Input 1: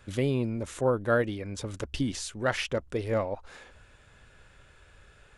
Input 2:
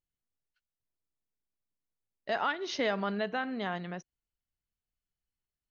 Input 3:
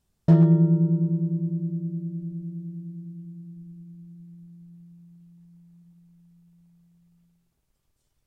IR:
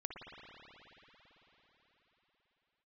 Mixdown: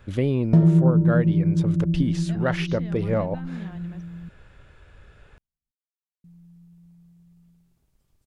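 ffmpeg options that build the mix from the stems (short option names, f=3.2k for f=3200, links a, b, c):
-filter_complex "[0:a]equalizer=f=8.6k:w=0.63:g=-9,volume=2dB[a];[1:a]lowshelf=f=340:t=q:w=1.5:g=8,acrossover=split=180[b][c];[c]acompressor=threshold=-30dB:ratio=6[d];[b][d]amix=inputs=2:normalize=0,volume=-11.5dB[e];[2:a]adelay=250,volume=1.5dB,asplit=3[f][g][h];[f]atrim=end=4.29,asetpts=PTS-STARTPTS,afade=t=out:st=4.286:d=0.004:c=hsin[i];[g]atrim=start=4.29:end=6.24,asetpts=PTS-STARTPTS,volume=0[j];[h]atrim=start=6.24,asetpts=PTS-STARTPTS,afade=t=in:d=0.004:c=hsin[k];[i][j][k]concat=n=3:v=0:a=1[l];[a][e][l]amix=inputs=3:normalize=0,lowshelf=f=400:g=5.5,acompressor=threshold=-17dB:ratio=2"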